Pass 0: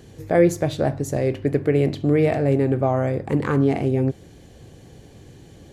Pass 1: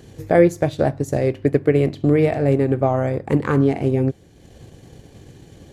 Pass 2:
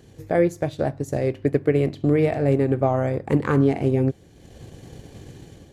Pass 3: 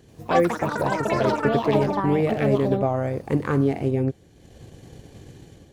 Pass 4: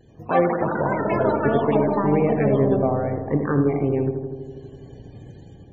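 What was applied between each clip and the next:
transient designer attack +3 dB, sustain −6 dB; level +1.5 dB
automatic gain control gain up to 8 dB; level −6 dB
delay with pitch and tempo change per echo 86 ms, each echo +7 semitones, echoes 3; level −2.5 dB
pitch vibrato 0.61 Hz 25 cents; feedback echo with a low-pass in the loop 81 ms, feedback 79%, low-pass 1,600 Hz, level −7 dB; spectral peaks only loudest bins 64

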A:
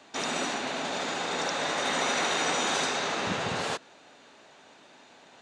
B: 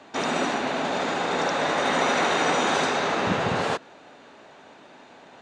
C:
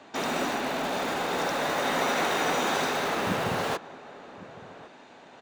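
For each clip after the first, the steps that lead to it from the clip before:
high-shelf EQ 3,000 Hz −11.5 dB; level +7.5 dB
in parallel at −11 dB: wrap-around overflow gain 22.5 dB; on the sum: slap from a distant wall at 190 metres, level −17 dB; level −4 dB

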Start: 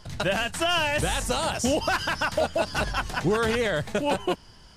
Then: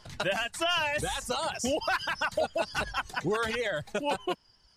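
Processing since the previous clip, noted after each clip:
high-shelf EQ 7,700 Hz −4 dB
reverb reduction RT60 1.6 s
low-shelf EQ 320 Hz −7.5 dB
level −2 dB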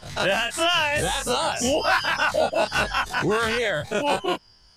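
every bin's largest magnitude spread in time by 60 ms
level +3.5 dB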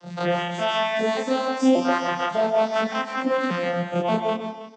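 vocoder with an arpeggio as carrier major triad, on F3, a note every 583 ms
single-tap delay 321 ms −15 dB
on a send at −5 dB: convolution reverb RT60 0.45 s, pre-delay 120 ms

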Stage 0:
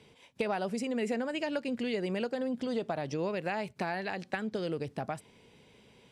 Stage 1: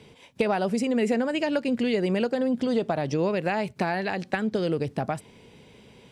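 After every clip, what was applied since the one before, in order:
low-shelf EQ 500 Hz +3.5 dB
level +6 dB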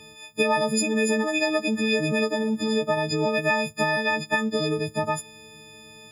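every partial snapped to a pitch grid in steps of 6 semitones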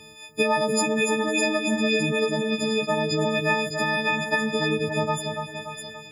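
echo with a time of its own for lows and highs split 2,000 Hz, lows 288 ms, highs 608 ms, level −5 dB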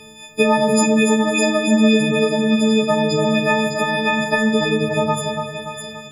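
rectangular room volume 860 cubic metres, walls furnished, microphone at 1.4 metres
level +4.5 dB

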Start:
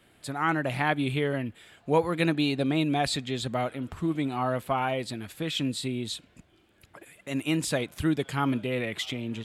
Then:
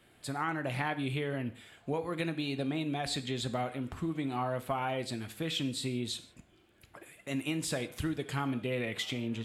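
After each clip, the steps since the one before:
downward compressor 10 to 1, threshold −27 dBFS, peak gain reduction 10.5 dB
reverb whose tail is shaped and stops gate 190 ms falling, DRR 9.5 dB
level −2.5 dB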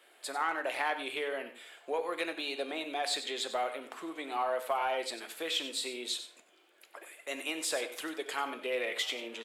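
high-pass filter 420 Hz 24 dB per octave
in parallel at −7 dB: soft clipping −30 dBFS, distortion −14 dB
on the sum: single-tap delay 94 ms −12 dB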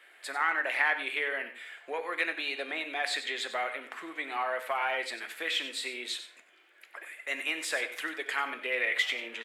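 parametric band 1,900 Hz +14 dB 1.1 octaves
level −3.5 dB

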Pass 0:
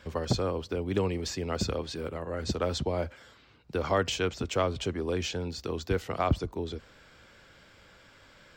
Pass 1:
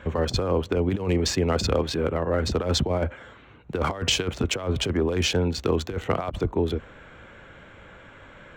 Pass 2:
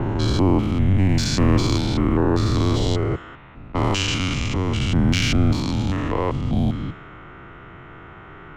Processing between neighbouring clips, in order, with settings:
adaptive Wiener filter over 9 samples; compressor whose output falls as the input rises −31 dBFS, ratio −0.5; level +8.5 dB
spectrum averaged block by block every 200 ms; low-pass that shuts in the quiet parts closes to 2,300 Hz, open at −23 dBFS; frequency shifter −190 Hz; level +8 dB

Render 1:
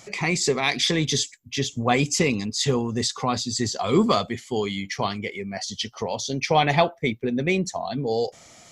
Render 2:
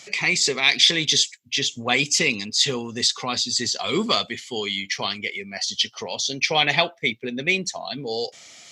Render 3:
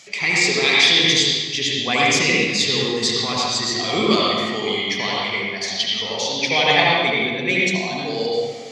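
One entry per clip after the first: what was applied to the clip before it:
meter weighting curve D; level −3.5 dB
convolution reverb RT60 1.5 s, pre-delay 67 ms, DRR −6 dB; level −1.5 dB

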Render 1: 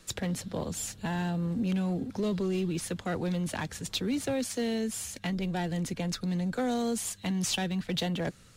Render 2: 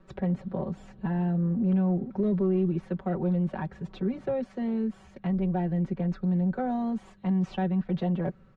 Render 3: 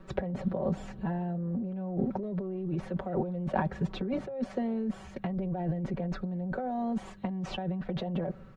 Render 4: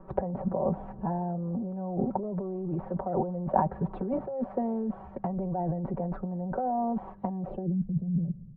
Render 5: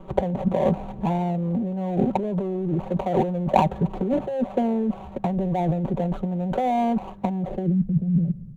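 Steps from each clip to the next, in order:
low-pass filter 1,100 Hz 12 dB per octave; comb filter 5.3 ms, depth 81%
dynamic equaliser 610 Hz, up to +8 dB, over −46 dBFS, Q 1.7; compressor whose output falls as the input rises −32 dBFS, ratio −1
low-pass filter sweep 900 Hz → 160 Hz, 0:07.36–0:07.87
running median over 25 samples; level +7.5 dB

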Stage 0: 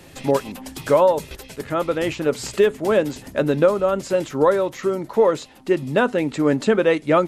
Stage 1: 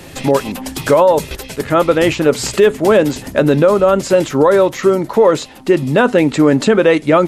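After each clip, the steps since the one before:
boost into a limiter +11 dB
level −1 dB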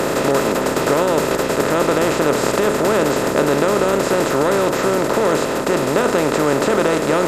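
compressor on every frequency bin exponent 0.2
high-shelf EQ 8,400 Hz +8 dB
level −13.5 dB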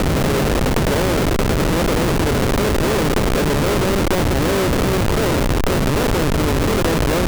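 comparator with hysteresis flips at −14.5 dBFS
transient designer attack +3 dB, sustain +8 dB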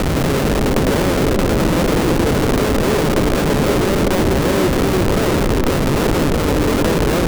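echo through a band-pass that steps 168 ms, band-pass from 240 Hz, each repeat 0.7 octaves, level 0 dB

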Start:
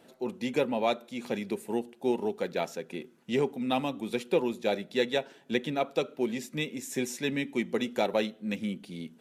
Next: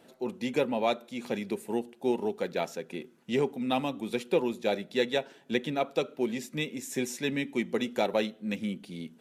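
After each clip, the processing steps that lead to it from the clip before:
no processing that can be heard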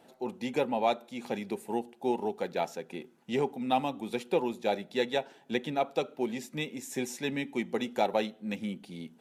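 parametric band 810 Hz +8 dB 0.41 octaves
level −2.5 dB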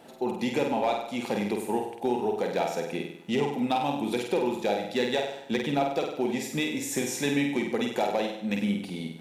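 downward compressor 3 to 1, threshold −33 dBFS, peak gain reduction 9 dB
gain into a clipping stage and back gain 26 dB
on a send: flutter between parallel walls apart 8.4 metres, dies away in 0.69 s
on the sum: level +7.5 dB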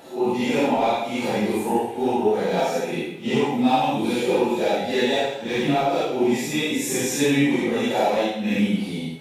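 random phases in long frames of 200 ms
level +6.5 dB

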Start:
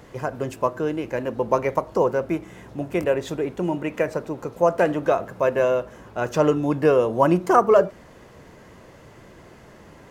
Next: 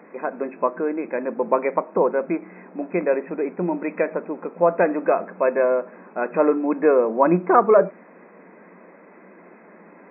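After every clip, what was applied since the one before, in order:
brick-wall band-pass 170–2,600 Hz
level +1 dB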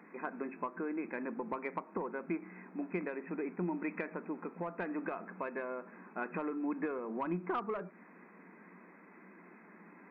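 soft clipping −5 dBFS, distortion −24 dB
downward compressor 10 to 1, threshold −22 dBFS, peak gain reduction 11.5 dB
parametric band 560 Hz −12.5 dB 0.82 octaves
level −6 dB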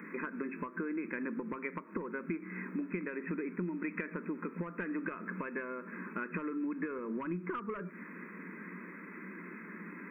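downward compressor, threshold −44 dBFS, peak gain reduction 12.5 dB
phaser with its sweep stopped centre 1,800 Hz, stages 4
level +12 dB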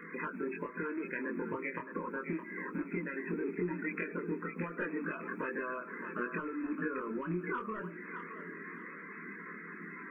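spectral magnitudes quantised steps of 30 dB
multi-voice chorus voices 4, 0.25 Hz, delay 24 ms, depth 1.6 ms
feedback echo with a high-pass in the loop 616 ms, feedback 32%, high-pass 590 Hz, level −7 dB
level +4 dB

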